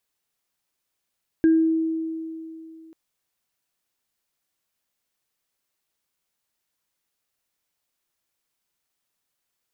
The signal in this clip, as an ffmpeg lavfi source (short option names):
-f lavfi -i "aevalsrc='0.237*pow(10,-3*t/2.77)*sin(2*PI*323*t)+0.0282*pow(10,-3*t/0.37)*sin(2*PI*1610*t)':d=1.49:s=44100"